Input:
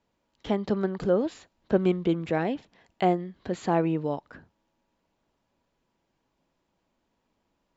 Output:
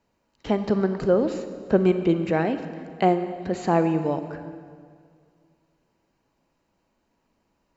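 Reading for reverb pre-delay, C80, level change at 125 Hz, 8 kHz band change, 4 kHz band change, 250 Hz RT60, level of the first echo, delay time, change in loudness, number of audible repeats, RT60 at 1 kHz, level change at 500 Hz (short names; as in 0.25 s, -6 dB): 34 ms, 10.5 dB, +3.5 dB, n/a, +2.0 dB, 2.3 s, none, none, +4.0 dB, none, 2.0 s, +4.0 dB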